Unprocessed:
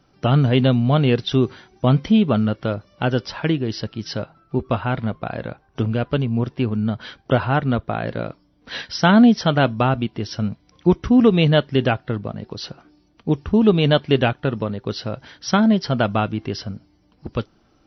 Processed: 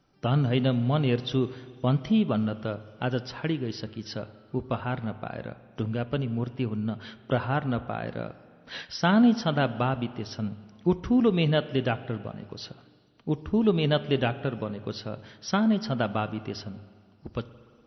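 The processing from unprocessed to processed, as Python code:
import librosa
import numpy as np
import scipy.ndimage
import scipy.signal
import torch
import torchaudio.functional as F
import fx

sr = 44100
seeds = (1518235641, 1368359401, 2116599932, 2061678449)

y = fx.hum_notches(x, sr, base_hz=50, count=2)
y = fx.rev_spring(y, sr, rt60_s=2.0, pass_ms=(41, 58), chirp_ms=35, drr_db=14.5)
y = F.gain(torch.from_numpy(y), -8.0).numpy()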